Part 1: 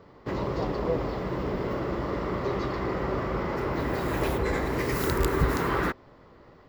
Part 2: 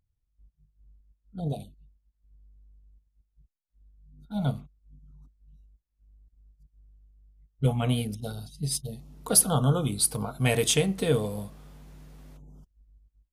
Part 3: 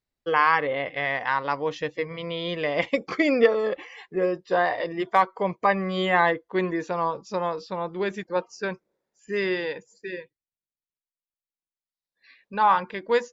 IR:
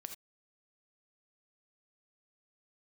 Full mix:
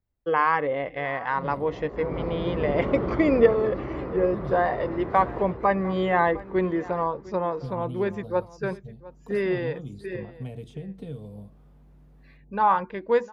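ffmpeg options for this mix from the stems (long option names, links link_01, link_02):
-filter_complex "[0:a]dynaudnorm=framelen=200:gausssize=21:maxgain=11dB,lowpass=4500,acompressor=threshold=-20dB:ratio=6,adelay=1150,volume=-1dB,afade=type=in:start_time=1.91:duration=0.26:silence=0.316228,afade=type=out:start_time=2.98:duration=0.62:silence=0.354813,afade=type=out:start_time=5.36:duration=0.33:silence=0.375837,asplit=2[link_01][link_02];[link_02]volume=-8dB[link_03];[1:a]acrossover=split=220|730|2600|5500[link_04][link_05][link_06][link_07][link_08];[link_04]acompressor=threshold=-30dB:ratio=4[link_09];[link_05]acompressor=threshold=-37dB:ratio=4[link_10];[link_06]acompressor=threshold=-56dB:ratio=4[link_11];[link_07]acompressor=threshold=-42dB:ratio=4[link_12];[link_08]acompressor=threshold=-54dB:ratio=4[link_13];[link_09][link_10][link_11][link_12][link_13]amix=inputs=5:normalize=0,highshelf=frequency=11000:gain=-9,volume=-5dB[link_14];[2:a]volume=2dB,asplit=2[link_15][link_16];[link_16]volume=-19.5dB[link_17];[link_03][link_17]amix=inputs=2:normalize=0,aecho=0:1:704:1[link_18];[link_01][link_14][link_15][link_18]amix=inputs=4:normalize=0,equalizer=frequency=6000:width=0.33:gain=-14"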